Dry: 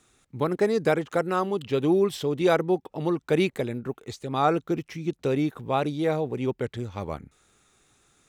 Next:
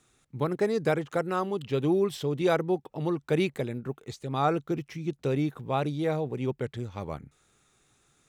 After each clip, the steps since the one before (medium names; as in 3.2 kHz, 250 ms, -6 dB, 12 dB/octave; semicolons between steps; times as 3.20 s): peaking EQ 140 Hz +5.5 dB 0.35 oct; trim -3.5 dB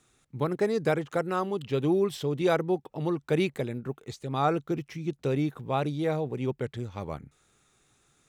no audible change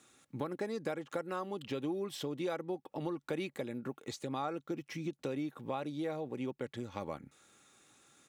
Bessel high-pass 170 Hz, order 2; comb 3.6 ms, depth 32%; compression 4:1, threshold -39 dBFS, peak gain reduction 16 dB; trim +2.5 dB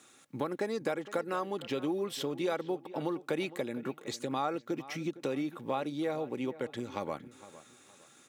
high-pass 200 Hz 6 dB/octave; short-mantissa float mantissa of 6-bit; feedback echo behind a low-pass 460 ms, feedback 31%, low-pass 3.3 kHz, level -16.5 dB; trim +5 dB